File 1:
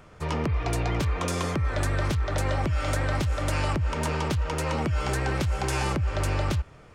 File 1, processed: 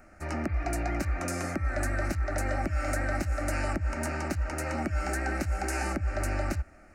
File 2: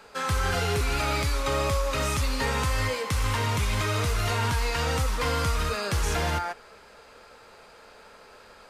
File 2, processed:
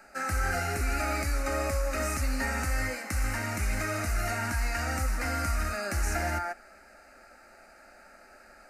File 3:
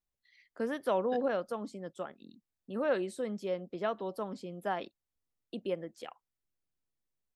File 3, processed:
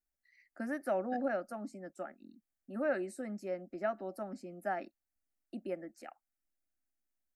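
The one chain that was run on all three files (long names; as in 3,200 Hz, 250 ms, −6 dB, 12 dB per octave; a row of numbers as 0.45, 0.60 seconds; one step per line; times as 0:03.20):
phaser with its sweep stopped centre 680 Hz, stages 8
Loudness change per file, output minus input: −4.0, −4.0, −3.0 LU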